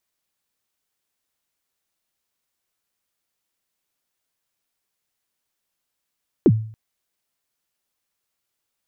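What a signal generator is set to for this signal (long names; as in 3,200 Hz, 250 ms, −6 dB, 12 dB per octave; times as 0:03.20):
synth kick length 0.28 s, from 430 Hz, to 110 Hz, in 49 ms, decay 0.50 s, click off, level −7 dB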